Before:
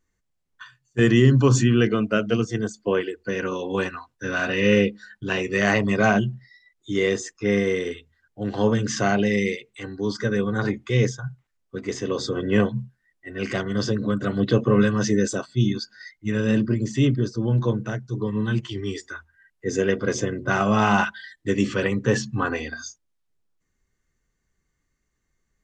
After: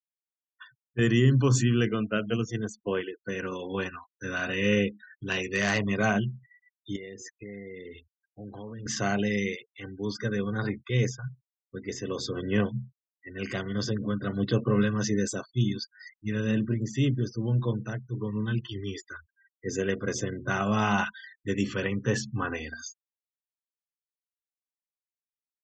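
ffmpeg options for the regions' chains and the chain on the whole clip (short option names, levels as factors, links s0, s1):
-filter_complex "[0:a]asettb=1/sr,asplit=3[s0][s1][s2];[s0]atrim=end=5.284[s3];[s1]atrim=start=5.28:end=5.86,asetpts=PTS-STARTPTS,afade=t=in:d=0.004:c=qsin,afade=t=out:st=0.576:d=0.004:c=qsin,highshelf=f=2200:g=4.5,bandreject=f=60:t=h:w=6,bandreject=f=120:t=h:w=6,bandreject=f=180:t=h:w=6,bandreject=f=240:t=h:w=6,bandreject=f=300:t=h:w=6,bandreject=f=360:t=h:w=6,asoftclip=type=hard:threshold=0.211[s4];[s2]atrim=start=5.856[s5];[s3][s4]acrossfade=d=0.004:c1=hsin:c2=qsin[s6];[s6][s5]acrossfade=d=0.004:c1=qsin:c2=hsin,asettb=1/sr,asplit=3[s7][s8][s9];[s7]atrim=end=6.964[s10];[s8]atrim=start=6.96:end=8.86,asetpts=PTS-STARTPTS,afade=t=in:d=0.004:c=qsin,afade=t=out:st=1.896:d=0.004:c=qsin,highshelf=f=6300:g=-8.5,acompressor=threshold=0.0251:ratio=5:attack=3.2:release=140:knee=1:detection=peak[s11];[s9]atrim=start=8.856[s12];[s10][s11]acrossfade=d=0.004:c1=hsin:c2=qsin[s13];[s13][s12]acrossfade=d=0.004:c1=qsin:c2=hsin,afftfilt=real='re*gte(hypot(re,im),0.0112)':imag='im*gte(hypot(re,im),0.0112)':win_size=1024:overlap=0.75,equalizer=f=580:w=0.31:g=-4.5,volume=0.708"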